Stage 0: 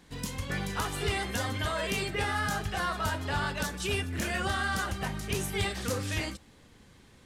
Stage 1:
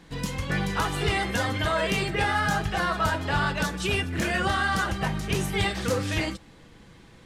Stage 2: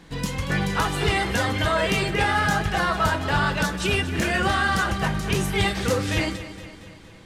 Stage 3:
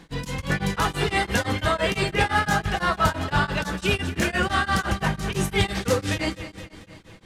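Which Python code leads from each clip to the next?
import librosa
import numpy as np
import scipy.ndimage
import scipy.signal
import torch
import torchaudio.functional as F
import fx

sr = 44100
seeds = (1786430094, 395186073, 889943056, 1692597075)

y1 = fx.high_shelf(x, sr, hz=6200.0, db=-9.0)
y1 = y1 + 0.3 * np.pad(y1, (int(6.1 * sr / 1000.0), 0))[:len(y1)]
y1 = y1 * librosa.db_to_amplitude(6.0)
y2 = fx.echo_feedback(y1, sr, ms=232, feedback_pct=56, wet_db=-14.0)
y2 = y2 * librosa.db_to_amplitude(3.0)
y3 = y2 * np.abs(np.cos(np.pi * 5.9 * np.arange(len(y2)) / sr))
y3 = y3 * librosa.db_to_amplitude(2.0)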